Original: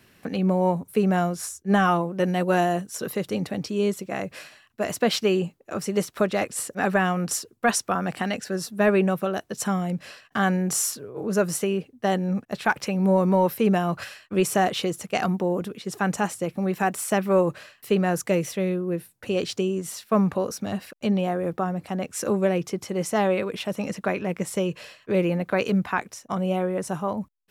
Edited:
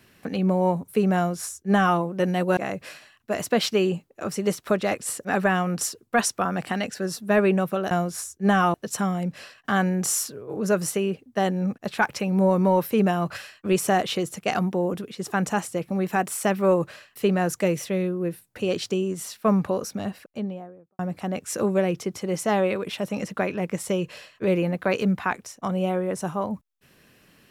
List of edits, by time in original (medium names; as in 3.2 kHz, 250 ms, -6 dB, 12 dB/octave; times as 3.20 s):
1.16–1.99 s: copy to 9.41 s
2.57–4.07 s: delete
20.48–21.66 s: studio fade out